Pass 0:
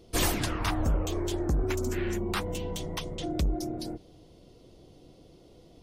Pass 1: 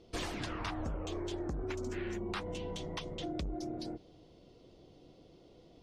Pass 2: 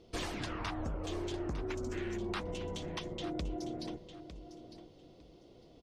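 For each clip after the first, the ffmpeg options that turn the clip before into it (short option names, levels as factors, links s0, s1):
-af "lowshelf=f=130:g=-5.5,acompressor=threshold=0.0251:ratio=4,lowpass=5300,volume=0.708"
-af "aecho=1:1:904|1808:0.251|0.0452"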